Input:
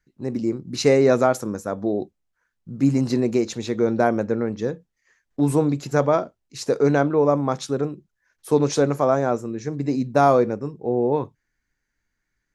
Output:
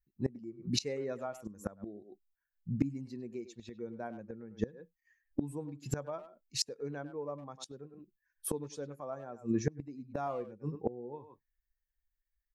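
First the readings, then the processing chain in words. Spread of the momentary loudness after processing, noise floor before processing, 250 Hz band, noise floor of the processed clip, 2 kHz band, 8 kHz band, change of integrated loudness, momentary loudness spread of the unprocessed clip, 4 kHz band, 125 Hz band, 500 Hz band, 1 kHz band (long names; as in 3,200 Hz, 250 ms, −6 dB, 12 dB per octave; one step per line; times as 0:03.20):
13 LU, −78 dBFS, −16.5 dB, below −85 dBFS, −20.0 dB, −8.0 dB, −18.0 dB, 12 LU, −6.5 dB, −15.0 dB, −20.5 dB, −21.0 dB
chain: spectral dynamics exaggerated over time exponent 1.5
far-end echo of a speakerphone 100 ms, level −12 dB
gate with flip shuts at −23 dBFS, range −25 dB
level +5.5 dB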